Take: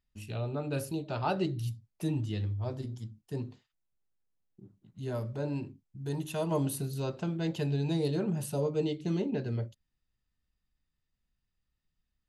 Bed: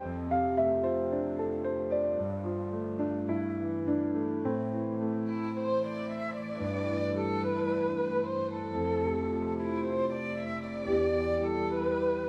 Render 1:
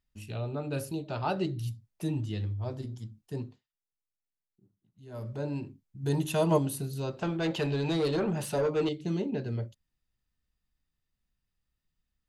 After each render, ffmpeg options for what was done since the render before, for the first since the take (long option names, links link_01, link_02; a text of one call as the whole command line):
ffmpeg -i in.wav -filter_complex "[0:a]asplit=3[link_01][link_02][link_03];[link_01]afade=type=out:start_time=6.02:duration=0.02[link_04];[link_02]acontrast=53,afade=type=in:start_time=6.02:duration=0.02,afade=type=out:start_time=6.57:duration=0.02[link_05];[link_03]afade=type=in:start_time=6.57:duration=0.02[link_06];[link_04][link_05][link_06]amix=inputs=3:normalize=0,asettb=1/sr,asplit=3[link_07][link_08][link_09];[link_07]atrim=end=7.214[link_10];[link_08]atrim=start=7.21:end=8.89,asetpts=PTS-STARTPTS,afade=type=in:duration=0.004:curve=qsin,afade=type=out:start_time=1.676:duration=0.004:curve=qsin,asplit=2[link_11][link_12];[link_12]highpass=frequency=720:poles=1,volume=18dB,asoftclip=type=tanh:threshold=-19.5dB[link_13];[link_11][link_13]amix=inputs=2:normalize=0,lowpass=frequency=2900:poles=1,volume=-6dB[link_14];[link_09]atrim=start=8.886[link_15];[link_10][link_14]acrossfade=duration=0.004:curve1=hsin:curve2=qsin[link_16];[link_16][link_15]acrossfade=duration=0.004:curve1=qsin:curve2=hsin,asplit=3[link_17][link_18][link_19];[link_17]atrim=end=3.61,asetpts=PTS-STARTPTS,afade=type=out:start_time=3.41:duration=0.2:silence=0.223872[link_20];[link_18]atrim=start=3.61:end=5.09,asetpts=PTS-STARTPTS,volume=-13dB[link_21];[link_19]atrim=start=5.09,asetpts=PTS-STARTPTS,afade=type=in:duration=0.2:silence=0.223872[link_22];[link_20][link_21][link_22]concat=n=3:v=0:a=1" out.wav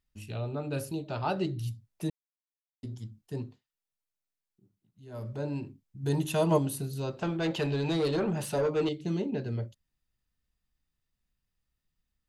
ffmpeg -i in.wav -filter_complex "[0:a]asplit=3[link_01][link_02][link_03];[link_01]atrim=end=2.1,asetpts=PTS-STARTPTS,afade=type=out:start_time=2.096:duration=0.004:curve=hsin[link_04];[link_02]atrim=start=2.1:end=2.83,asetpts=PTS-STARTPTS,volume=0[link_05];[link_03]atrim=start=2.83,asetpts=PTS-STARTPTS,afade=type=in:duration=0.004:curve=hsin[link_06];[link_04][link_05][link_06]concat=n=3:v=0:a=1" out.wav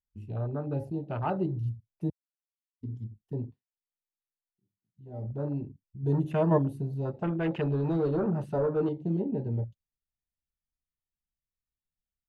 ffmpeg -i in.wav -af "afwtdn=0.0112,bass=frequency=250:gain=3,treble=frequency=4000:gain=-10" out.wav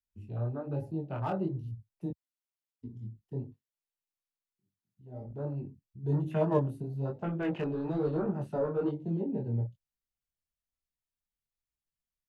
ffmpeg -i in.wav -filter_complex "[0:a]acrossover=split=150|280|920[link_01][link_02][link_03][link_04];[link_04]volume=32dB,asoftclip=hard,volume=-32dB[link_05];[link_01][link_02][link_03][link_05]amix=inputs=4:normalize=0,flanger=delay=19:depth=6.4:speed=1.1" out.wav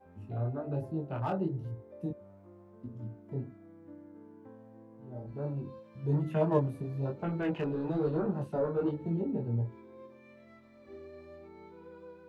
ffmpeg -i in.wav -i bed.wav -filter_complex "[1:a]volume=-21.5dB[link_01];[0:a][link_01]amix=inputs=2:normalize=0" out.wav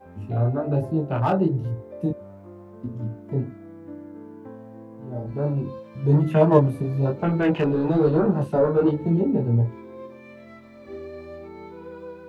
ffmpeg -i in.wav -af "volume=11.5dB" out.wav